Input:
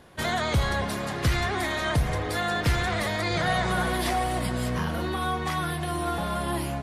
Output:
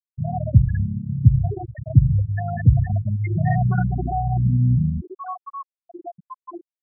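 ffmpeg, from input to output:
ffmpeg -i in.wav -af "aeval=exprs='val(0)+0.5*0.0119*sgn(val(0))':channel_layout=same,asetnsamples=nb_out_samples=441:pad=0,asendcmd='5.01 equalizer g -4',equalizer=frequency=120:width_type=o:width=1.1:gain=12.5,flanger=delay=5.1:depth=6.6:regen=-74:speed=0.6:shape=sinusoidal,afftfilt=real='re*gte(hypot(re,im),0.2)':imag='im*gte(hypot(re,im),0.2)':win_size=1024:overlap=0.75,volume=6.5dB" out.wav

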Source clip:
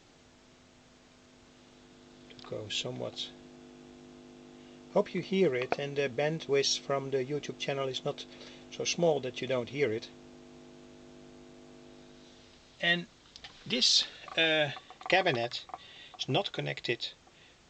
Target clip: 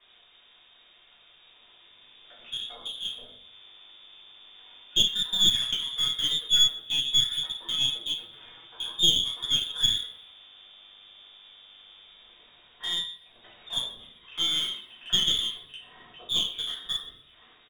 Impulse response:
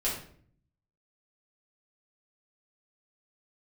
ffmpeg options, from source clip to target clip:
-filter_complex "[0:a]acrossover=split=250|760[link_01][link_02][link_03];[link_03]acompressor=threshold=-48dB:ratio=6[link_04];[link_01][link_02][link_04]amix=inputs=3:normalize=0,lowpass=frequency=3200:width_type=q:width=0.5098,lowpass=frequency=3200:width_type=q:width=0.6013,lowpass=frequency=3200:width_type=q:width=0.9,lowpass=frequency=3200:width_type=q:width=2.563,afreqshift=-3800,asplit=2[link_05][link_06];[link_06]acrusher=bits=4:mix=0:aa=0.5,volume=-8.5dB[link_07];[link_05][link_07]amix=inputs=2:normalize=0,aecho=1:1:125|250|375:0.106|0.0392|0.0145[link_08];[1:a]atrim=start_sample=2205[link_09];[link_08][link_09]afir=irnorm=-1:irlink=0,aeval=exprs='(tanh(3.55*val(0)+0.65)-tanh(0.65))/3.55':channel_layout=same"

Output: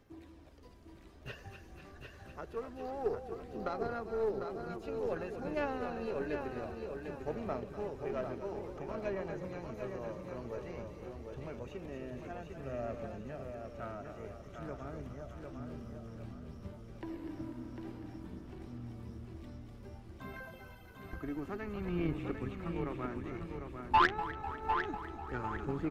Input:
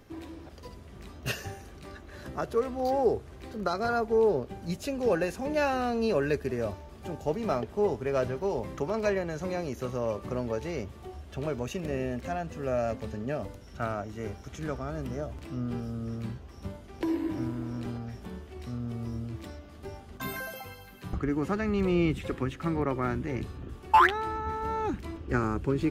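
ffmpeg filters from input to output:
ffmpeg -i in.wav -filter_complex "[0:a]asplit=2[link_01][link_02];[link_02]asplit=6[link_03][link_04][link_05][link_06][link_07][link_08];[link_03]adelay=247,afreqshift=-37,volume=-9dB[link_09];[link_04]adelay=494,afreqshift=-74,volume=-14.4dB[link_10];[link_05]adelay=741,afreqshift=-111,volume=-19.7dB[link_11];[link_06]adelay=988,afreqshift=-148,volume=-25.1dB[link_12];[link_07]adelay=1235,afreqshift=-185,volume=-30.4dB[link_13];[link_08]adelay=1482,afreqshift=-222,volume=-35.8dB[link_14];[link_09][link_10][link_11][link_12][link_13][link_14]amix=inputs=6:normalize=0[link_15];[link_01][link_15]amix=inputs=2:normalize=0,acrossover=split=3400[link_16][link_17];[link_17]acompressor=threshold=-57dB:ratio=4:attack=1:release=60[link_18];[link_16][link_18]amix=inputs=2:normalize=0,aphaser=in_gain=1:out_gain=1:delay=3.2:decay=0.3:speed=0.54:type=sinusoidal,asplit=2[link_19][link_20];[link_20]aecho=0:1:750|1500|2250|3000|3750:0.531|0.207|0.0807|0.0315|0.0123[link_21];[link_19][link_21]amix=inputs=2:normalize=0,aeval=exprs='0.422*(cos(1*acos(clip(val(0)/0.422,-1,1)))-cos(1*PI/2))+0.075*(cos(3*acos(clip(val(0)/0.422,-1,1)))-cos(3*PI/2))+0.00944*(cos(6*acos(clip(val(0)/0.422,-1,1)))-cos(6*PI/2))':channel_layout=same,volume=-6dB" out.wav

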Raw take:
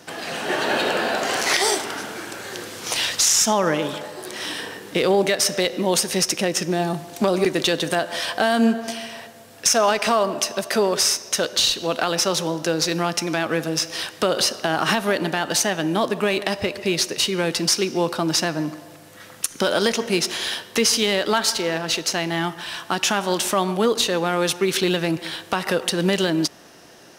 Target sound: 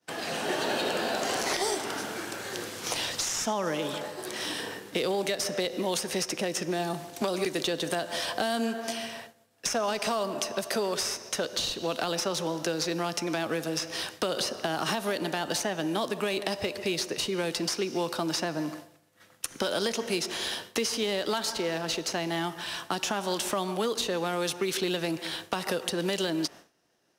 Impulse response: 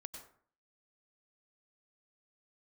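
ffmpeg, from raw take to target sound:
-filter_complex "[0:a]agate=range=-33dB:threshold=-33dB:ratio=3:detection=peak,acrossover=split=290|1100|3200[link_01][link_02][link_03][link_04];[link_01]acompressor=threshold=-36dB:ratio=4[link_05];[link_02]acompressor=threshold=-27dB:ratio=4[link_06];[link_03]acompressor=threshold=-37dB:ratio=4[link_07];[link_04]acompressor=threshold=-30dB:ratio=4[link_08];[link_05][link_06][link_07][link_08]amix=inputs=4:normalize=0,volume=-2.5dB"

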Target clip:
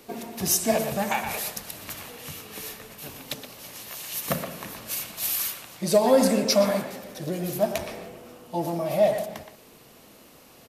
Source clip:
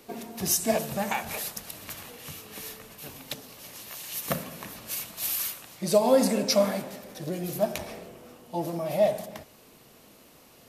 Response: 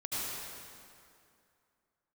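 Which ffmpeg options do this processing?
-filter_complex "[0:a]acontrast=80,asplit=2[link_01][link_02];[link_02]adelay=120,highpass=300,lowpass=3400,asoftclip=type=hard:threshold=-12.5dB,volume=-7dB[link_03];[link_01][link_03]amix=inputs=2:normalize=0,volume=-4.5dB"

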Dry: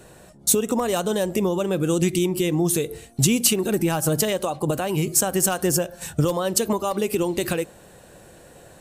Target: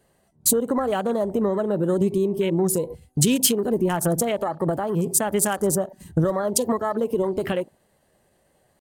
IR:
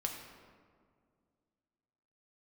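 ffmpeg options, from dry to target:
-af "afwtdn=0.0251,asetrate=48091,aresample=44100,atempo=0.917004"

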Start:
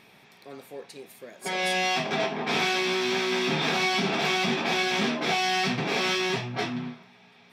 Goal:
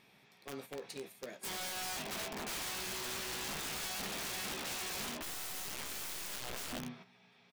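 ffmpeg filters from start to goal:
ffmpeg -i in.wav -filter_complex "[0:a]agate=range=-10dB:threshold=-46dB:ratio=16:detection=peak,equalizer=frequency=820:width=0.32:gain=-2.5,acompressor=threshold=-43dB:ratio=3,asettb=1/sr,asplit=3[link_01][link_02][link_03];[link_01]atrim=end=5.224[link_04];[link_02]atrim=start=5.22:end=6.73,asetpts=PTS-STARTPTS,afade=type=in:duration=0.004:curve=qsin,afade=type=out:start_time=1.506:duration=0.004:curve=qsin,aeval=exprs='0.0447*(cos(1*acos(clip(val(0)/0.0447,-1,1)))-cos(1*PI/2))+0.0112*(cos(4*acos(clip(val(0)/0.0447,-1,1)))-cos(4*PI/2))+0.00224*(cos(6*acos(clip(val(0)/0.0447,-1,1)))-cos(6*PI/2))+0.00251*(cos(7*acos(clip(val(0)/0.0447,-1,1)))-cos(7*PI/2))+0.00794*(cos(8*acos(clip(val(0)/0.0447,-1,1)))-cos(8*PI/2))':channel_layout=same[link_05];[link_03]atrim=start=6.726[link_06];[link_04][link_05]acrossfade=duration=0.004:curve1=hsin:curve2=qsin[link_07];[link_07][link_06]acrossfade=duration=0.004:curve1=qsin:curve2=hsin,aeval=exprs='(mod(66.8*val(0)+1,2)-1)/66.8':channel_layout=same,asplit=2[link_08][link_09];[link_09]adelay=15,volume=-11dB[link_10];[link_08][link_10]amix=inputs=2:normalize=0,volume=1.5dB" out.wav

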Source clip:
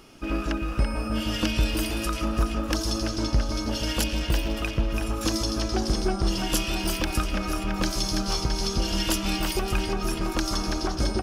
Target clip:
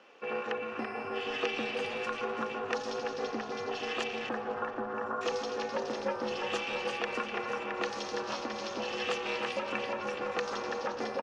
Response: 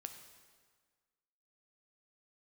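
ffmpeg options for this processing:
-filter_complex "[0:a]asettb=1/sr,asplit=3[link_01][link_02][link_03];[link_01]atrim=end=4.294[link_04];[link_02]atrim=start=4.29:end=5.21,asetpts=PTS-STARTPTS,afade=type=in:duration=0.004:curve=qsin,afade=type=out:start_time=0.916:duration=0.004:curve=qsin,highshelf=frequency=1800:width_type=q:width=3:gain=-10[link_05];[link_03]atrim=start=5.206[link_06];[link_04][link_05]acrossfade=duration=0.004:curve1=hsin:curve2=qsin[link_07];[link_07][link_06]acrossfade=duration=0.004:curve1=qsin:curve2=hsin,aeval=exprs='val(0)*sin(2*PI*170*n/s)':channel_layout=same,highpass=frequency=270:width=0.5412,highpass=frequency=270:width=1.3066,equalizer=frequency=500:width_type=q:width=4:gain=7,equalizer=frequency=810:width_type=q:width=4:gain=8,equalizer=frequency=1200:width_type=q:width=4:gain=7,equalizer=frequency=1800:width_type=q:width=4:gain=8,equalizer=frequency=2600:width_type=q:width=4:gain=7,equalizer=frequency=5100:width_type=q:width=4:gain=-7,lowpass=frequency=5800:width=0.5412,lowpass=frequency=5800:width=1.3066,asplit=5[link_08][link_09][link_10][link_11][link_12];[link_09]adelay=253,afreqshift=-120,volume=-17.5dB[link_13];[link_10]adelay=506,afreqshift=-240,volume=-24.8dB[link_14];[link_11]adelay=759,afreqshift=-360,volume=-32.2dB[link_15];[link_12]adelay=1012,afreqshift=-480,volume=-39.5dB[link_16];[link_08][link_13][link_14][link_15][link_16]amix=inputs=5:normalize=0,volume=-6.5dB"

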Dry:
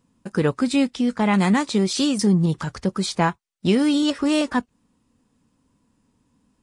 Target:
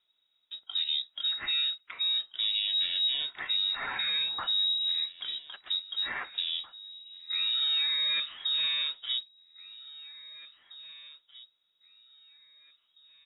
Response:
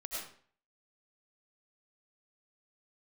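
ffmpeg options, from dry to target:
-filter_complex "[0:a]lowshelf=frequency=110:gain=-12,alimiter=limit=-14.5dB:level=0:latency=1,asplit=2[link_01][link_02];[link_02]aecho=0:1:1127|2254:0.112|0.0292[link_03];[link_01][link_03]amix=inputs=2:normalize=0,asetrate=22050,aresample=44100,lowpass=frequency=3300:width_type=q:width=0.5098,lowpass=frequency=3300:width_type=q:width=0.6013,lowpass=frequency=3300:width_type=q:width=0.9,lowpass=frequency=3300:width_type=q:width=2.563,afreqshift=-3900,volume=-7.5dB"

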